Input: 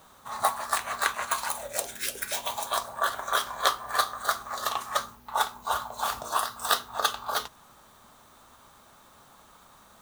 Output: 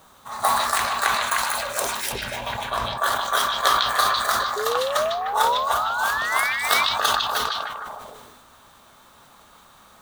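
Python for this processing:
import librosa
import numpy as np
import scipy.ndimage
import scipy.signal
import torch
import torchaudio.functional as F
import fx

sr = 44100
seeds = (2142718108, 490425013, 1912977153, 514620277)

y = fx.bass_treble(x, sr, bass_db=12, treble_db=-12, at=(2.12, 2.98))
y = fx.spec_paint(y, sr, seeds[0], shape='rise', start_s=4.56, length_s=1.97, low_hz=410.0, high_hz=2400.0, level_db=-30.0)
y = fx.echo_stepped(y, sr, ms=152, hz=3300.0, octaves=-0.7, feedback_pct=70, wet_db=0.0)
y = fx.sustainer(y, sr, db_per_s=32.0)
y = y * 10.0 ** (2.5 / 20.0)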